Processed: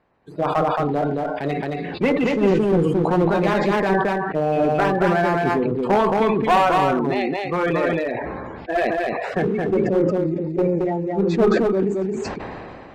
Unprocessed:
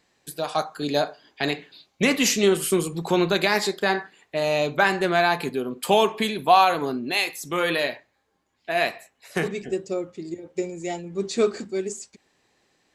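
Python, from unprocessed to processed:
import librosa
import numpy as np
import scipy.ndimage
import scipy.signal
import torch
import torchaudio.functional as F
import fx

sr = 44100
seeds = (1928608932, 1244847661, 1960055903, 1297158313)

p1 = fx.spec_quant(x, sr, step_db=30)
p2 = scipy.signal.sosfilt(scipy.signal.butter(2, 1100.0, 'lowpass', fs=sr, output='sos'), p1)
p3 = fx.rider(p2, sr, range_db=3, speed_s=0.5)
p4 = p2 + F.gain(torch.from_numpy(p3), -1.5).numpy()
p5 = fx.clip_asym(p4, sr, top_db=-17.0, bottom_db=-8.5)
p6 = fx.comb_fb(p5, sr, f0_hz=56.0, decay_s=0.34, harmonics='odd', damping=0.0, mix_pct=40, at=(0.74, 2.04))
p7 = p6 + fx.echo_single(p6, sr, ms=222, db=-3.0, dry=0)
y = fx.sustainer(p7, sr, db_per_s=23.0)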